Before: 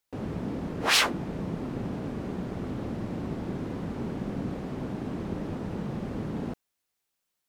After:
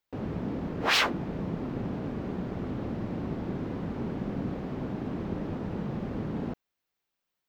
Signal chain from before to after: peaking EQ 9.7 kHz -13 dB 1.2 oct

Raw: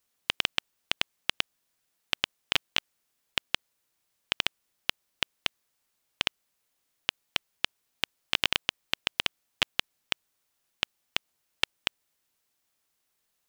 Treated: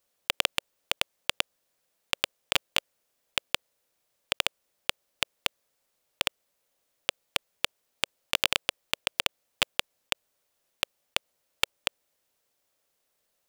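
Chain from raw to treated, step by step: block-companded coder 3-bit; peaking EQ 550 Hz +9.5 dB 0.71 oct

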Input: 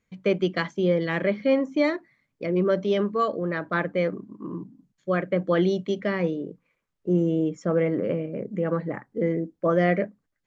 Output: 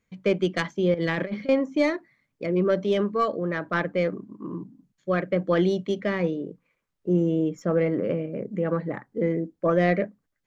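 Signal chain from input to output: tracing distortion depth 0.047 ms; 0.94–1.49 s: compressor with a negative ratio -27 dBFS, ratio -0.5

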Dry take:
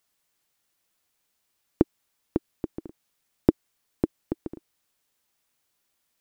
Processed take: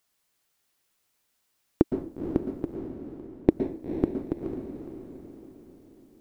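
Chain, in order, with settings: 2.75–3.49 s: gate -31 dBFS, range -13 dB; echo that smears into a reverb 482 ms, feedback 47%, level -8 dB; reverberation RT60 0.45 s, pre-delay 108 ms, DRR 7.5 dB

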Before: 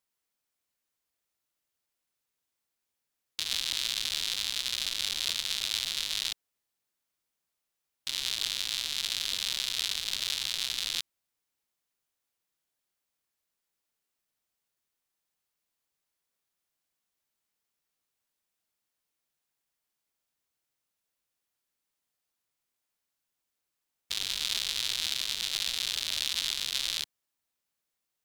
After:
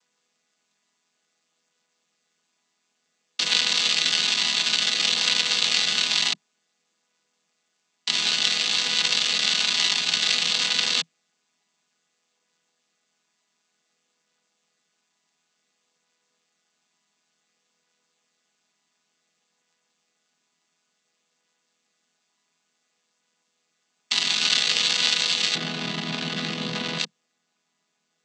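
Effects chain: vocoder on a held chord major triad, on E3; tilt EQ +3 dB/octave, from 25.54 s -2.5 dB/octave, from 26.98 s +2 dB/octave; trim +6 dB

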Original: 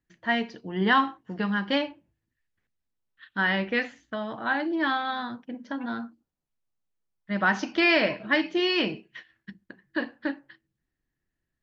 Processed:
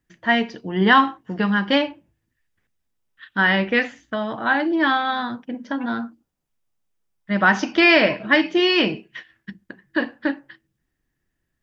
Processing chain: band-stop 4.2 kHz, Q 14; trim +7 dB

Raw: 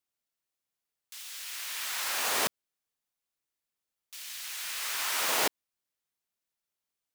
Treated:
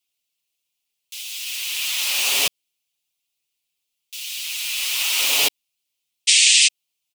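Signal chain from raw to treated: painted sound noise, 6.27–6.68 s, 1.7–9.2 kHz -25 dBFS; resonant high shelf 2.1 kHz +8 dB, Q 3; comb 7.1 ms, depth 83%; trim -1 dB

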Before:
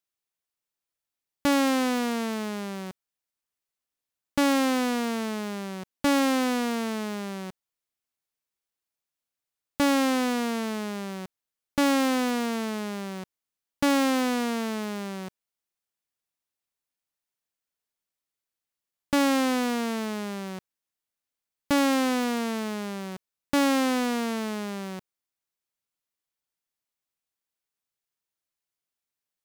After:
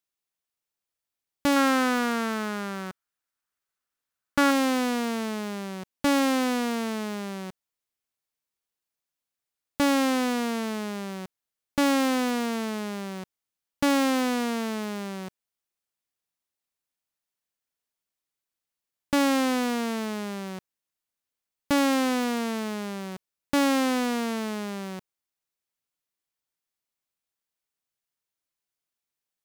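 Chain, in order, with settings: 1.56–4.51 s: peaking EQ 1.4 kHz +9 dB 0.76 oct

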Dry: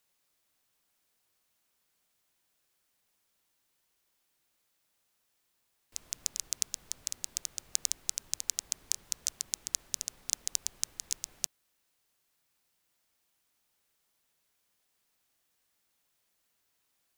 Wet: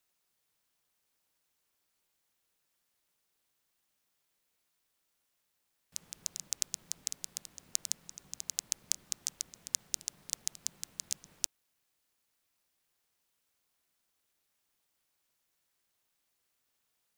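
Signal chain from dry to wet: ring modulator 170 Hz

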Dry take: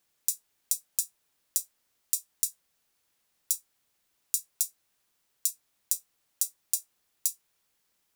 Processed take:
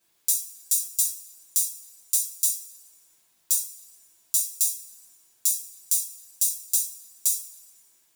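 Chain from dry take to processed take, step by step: two-slope reverb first 0.37 s, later 1.6 s, from -21 dB, DRR -7 dB; trim -1 dB

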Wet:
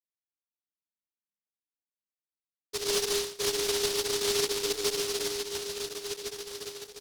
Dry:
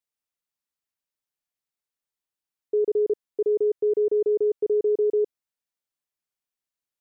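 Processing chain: 2.84–5.19 s: chunks repeated in reverse 534 ms, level -6 dB; gate -25 dBFS, range -9 dB; inharmonic resonator 100 Hz, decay 0.58 s, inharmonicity 0.002; one-sided clip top -34.5 dBFS; small resonant body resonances 200/310/460 Hz, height 12 dB; volume shaper 108 bpm, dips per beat 2, -8 dB, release 95 ms; doubling 30 ms -4 dB; repeats whose band climbs or falls 705 ms, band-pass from 230 Hz, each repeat 0.7 oct, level -5 dB; delay time shaken by noise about 4.4 kHz, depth 0.33 ms

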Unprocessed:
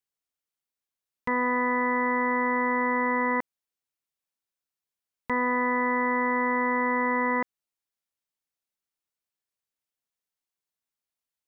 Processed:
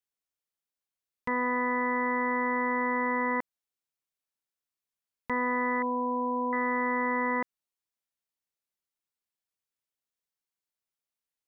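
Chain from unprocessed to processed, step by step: 5.82–6.53 s: brick-wall FIR low-pass 1.2 kHz; trim -3 dB

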